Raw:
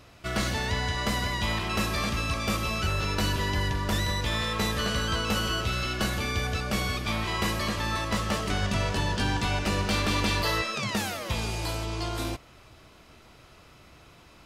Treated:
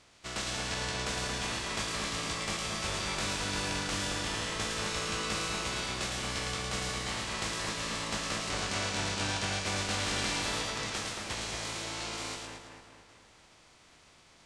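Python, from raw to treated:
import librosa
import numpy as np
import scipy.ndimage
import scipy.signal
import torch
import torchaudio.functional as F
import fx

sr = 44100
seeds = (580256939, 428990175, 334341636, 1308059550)

p1 = fx.spec_flatten(x, sr, power=0.4)
p2 = scipy.signal.sosfilt(scipy.signal.butter(4, 9500.0, 'lowpass', fs=sr, output='sos'), p1)
p3 = p2 + fx.echo_split(p2, sr, split_hz=2700.0, low_ms=225, high_ms=110, feedback_pct=52, wet_db=-3.5, dry=0)
p4 = fx.formant_shift(p3, sr, semitones=-2)
y = p4 * 10.0 ** (-8.0 / 20.0)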